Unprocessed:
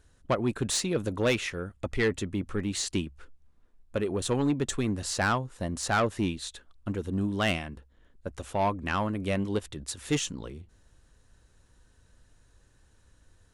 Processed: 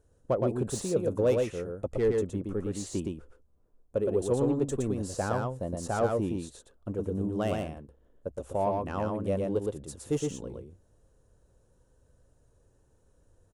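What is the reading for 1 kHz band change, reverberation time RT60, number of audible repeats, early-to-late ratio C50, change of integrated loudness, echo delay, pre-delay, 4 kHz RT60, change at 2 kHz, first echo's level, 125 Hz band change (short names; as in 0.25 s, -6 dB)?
-3.5 dB, none, 1, none, -1.0 dB, 0.116 s, none, none, -12.0 dB, -3.0 dB, -1.0 dB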